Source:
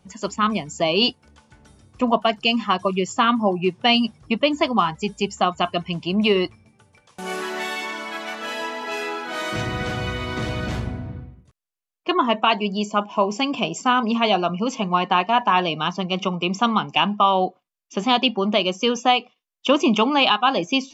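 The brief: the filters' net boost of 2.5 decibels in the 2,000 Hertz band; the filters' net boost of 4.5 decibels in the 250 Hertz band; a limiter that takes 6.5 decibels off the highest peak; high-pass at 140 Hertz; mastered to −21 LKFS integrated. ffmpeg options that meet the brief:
ffmpeg -i in.wav -af "highpass=140,equalizer=frequency=250:width_type=o:gain=6,equalizer=frequency=2000:width_type=o:gain=3.5,alimiter=limit=-8dB:level=0:latency=1" out.wav

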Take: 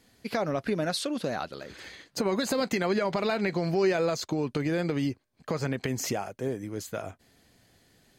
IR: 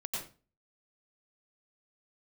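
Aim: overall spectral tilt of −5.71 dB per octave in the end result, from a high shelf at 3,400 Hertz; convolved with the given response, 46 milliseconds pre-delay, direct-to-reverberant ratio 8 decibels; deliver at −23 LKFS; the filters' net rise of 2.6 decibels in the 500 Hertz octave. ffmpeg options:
-filter_complex "[0:a]equalizer=frequency=500:width_type=o:gain=3.5,highshelf=frequency=3400:gain=-8,asplit=2[link_01][link_02];[1:a]atrim=start_sample=2205,adelay=46[link_03];[link_02][link_03]afir=irnorm=-1:irlink=0,volume=-10dB[link_04];[link_01][link_04]amix=inputs=2:normalize=0,volume=4.5dB"

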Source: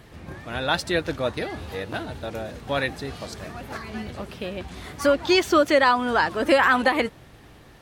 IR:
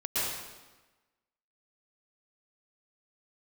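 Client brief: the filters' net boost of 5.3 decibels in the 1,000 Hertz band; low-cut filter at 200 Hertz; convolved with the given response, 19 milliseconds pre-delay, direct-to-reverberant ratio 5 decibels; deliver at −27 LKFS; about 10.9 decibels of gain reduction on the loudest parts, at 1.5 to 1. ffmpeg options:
-filter_complex "[0:a]highpass=200,equalizer=frequency=1000:width_type=o:gain=6.5,acompressor=threshold=-42dB:ratio=1.5,asplit=2[link_01][link_02];[1:a]atrim=start_sample=2205,adelay=19[link_03];[link_02][link_03]afir=irnorm=-1:irlink=0,volume=-14dB[link_04];[link_01][link_04]amix=inputs=2:normalize=0,volume=3dB"

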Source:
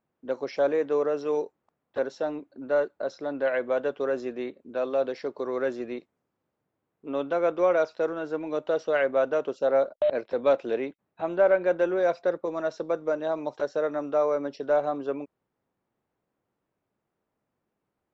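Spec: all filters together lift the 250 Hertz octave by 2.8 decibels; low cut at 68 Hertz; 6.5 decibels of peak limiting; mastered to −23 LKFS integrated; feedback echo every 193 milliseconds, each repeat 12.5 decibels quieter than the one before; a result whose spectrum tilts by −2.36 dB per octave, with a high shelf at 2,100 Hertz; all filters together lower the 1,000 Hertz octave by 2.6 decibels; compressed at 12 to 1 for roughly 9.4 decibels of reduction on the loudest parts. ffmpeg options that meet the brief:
ffmpeg -i in.wav -af "highpass=68,equalizer=frequency=250:width_type=o:gain=4,equalizer=frequency=1000:width_type=o:gain=-5.5,highshelf=frequency=2100:gain=4.5,acompressor=threshold=-27dB:ratio=12,alimiter=level_in=1dB:limit=-24dB:level=0:latency=1,volume=-1dB,aecho=1:1:193|386|579:0.237|0.0569|0.0137,volume=12dB" out.wav

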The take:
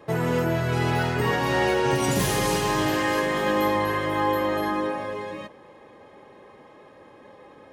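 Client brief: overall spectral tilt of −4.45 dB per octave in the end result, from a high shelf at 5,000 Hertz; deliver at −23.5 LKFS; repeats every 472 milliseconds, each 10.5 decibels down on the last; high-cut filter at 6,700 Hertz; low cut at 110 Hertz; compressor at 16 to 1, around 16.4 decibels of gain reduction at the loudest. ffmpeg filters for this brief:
ffmpeg -i in.wav -af "highpass=110,lowpass=6700,highshelf=frequency=5000:gain=-7,acompressor=threshold=-36dB:ratio=16,aecho=1:1:472|944|1416:0.299|0.0896|0.0269,volume=17dB" out.wav

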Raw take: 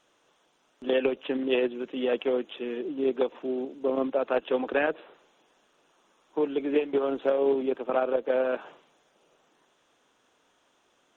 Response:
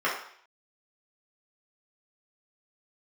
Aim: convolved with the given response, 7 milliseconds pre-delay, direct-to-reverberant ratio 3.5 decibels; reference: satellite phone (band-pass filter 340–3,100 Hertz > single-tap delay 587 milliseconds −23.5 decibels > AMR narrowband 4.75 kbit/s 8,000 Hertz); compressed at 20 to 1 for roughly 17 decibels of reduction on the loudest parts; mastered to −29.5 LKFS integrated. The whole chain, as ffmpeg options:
-filter_complex "[0:a]acompressor=threshold=-37dB:ratio=20,asplit=2[link_01][link_02];[1:a]atrim=start_sample=2205,adelay=7[link_03];[link_02][link_03]afir=irnorm=-1:irlink=0,volume=-17dB[link_04];[link_01][link_04]amix=inputs=2:normalize=0,highpass=340,lowpass=3100,aecho=1:1:587:0.0668,volume=15dB" -ar 8000 -c:a libopencore_amrnb -b:a 4750

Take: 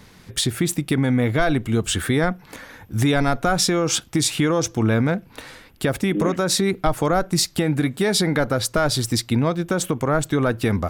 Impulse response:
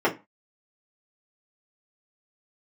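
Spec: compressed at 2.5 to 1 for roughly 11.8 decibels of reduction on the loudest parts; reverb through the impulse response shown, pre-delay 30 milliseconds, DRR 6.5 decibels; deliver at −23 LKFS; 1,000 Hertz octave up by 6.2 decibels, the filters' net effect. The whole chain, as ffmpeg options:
-filter_complex "[0:a]equalizer=frequency=1000:width_type=o:gain=9,acompressor=threshold=-30dB:ratio=2.5,asplit=2[link_01][link_02];[1:a]atrim=start_sample=2205,adelay=30[link_03];[link_02][link_03]afir=irnorm=-1:irlink=0,volume=-22.5dB[link_04];[link_01][link_04]amix=inputs=2:normalize=0,volume=5.5dB"

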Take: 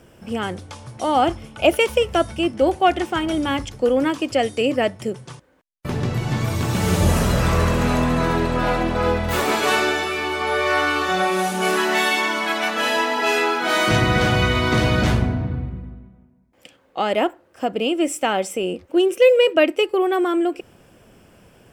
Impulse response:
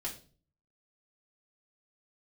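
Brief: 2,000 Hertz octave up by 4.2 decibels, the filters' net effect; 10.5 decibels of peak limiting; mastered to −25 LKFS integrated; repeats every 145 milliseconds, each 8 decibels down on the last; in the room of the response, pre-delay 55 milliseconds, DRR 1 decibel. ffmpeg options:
-filter_complex "[0:a]equalizer=frequency=2000:width_type=o:gain=5.5,alimiter=limit=-11.5dB:level=0:latency=1,aecho=1:1:145|290|435|580|725:0.398|0.159|0.0637|0.0255|0.0102,asplit=2[link_01][link_02];[1:a]atrim=start_sample=2205,adelay=55[link_03];[link_02][link_03]afir=irnorm=-1:irlink=0,volume=-2dB[link_04];[link_01][link_04]amix=inputs=2:normalize=0,volume=-7dB"

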